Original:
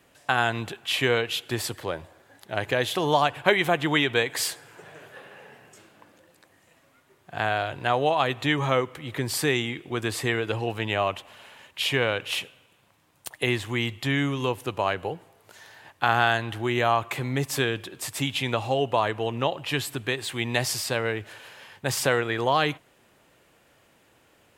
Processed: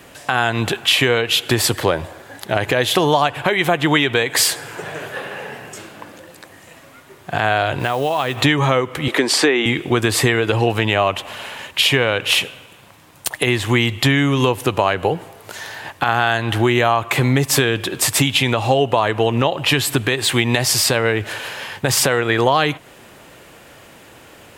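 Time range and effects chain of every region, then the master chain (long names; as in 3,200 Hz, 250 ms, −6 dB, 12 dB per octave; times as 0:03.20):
0:07.79–0:08.42: downward compressor 5 to 1, threshold −33 dBFS + noise that follows the level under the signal 24 dB
0:09.08–0:09.66: high-pass filter 250 Hz 24 dB per octave + treble cut that deepens with the level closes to 2,400 Hz, closed at −20 dBFS
whole clip: downward compressor 6 to 1, threshold −29 dBFS; boost into a limiter +18 dB; level −1 dB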